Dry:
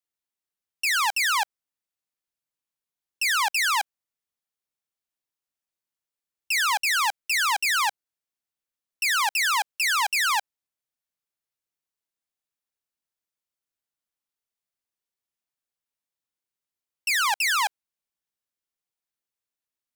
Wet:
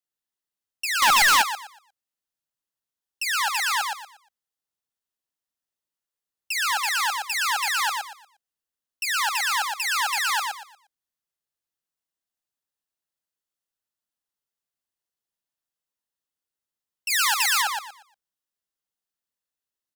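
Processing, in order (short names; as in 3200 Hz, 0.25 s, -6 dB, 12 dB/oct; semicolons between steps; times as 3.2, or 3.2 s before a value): notch 2300 Hz, Q 8.3; feedback echo 0.118 s, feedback 27%, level -3.5 dB; 1.02–1.42 sample leveller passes 5; 17.1–17.62 tilt +2 dB/oct; gain -2 dB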